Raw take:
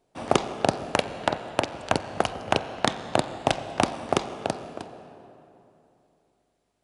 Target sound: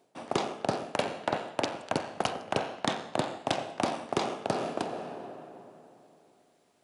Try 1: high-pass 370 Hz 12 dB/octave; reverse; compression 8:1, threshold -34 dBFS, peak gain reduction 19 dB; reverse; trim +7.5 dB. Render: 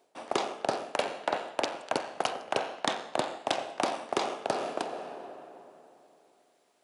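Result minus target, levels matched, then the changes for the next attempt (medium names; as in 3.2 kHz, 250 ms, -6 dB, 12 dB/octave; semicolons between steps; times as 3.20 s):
125 Hz band -10.0 dB
change: high-pass 170 Hz 12 dB/octave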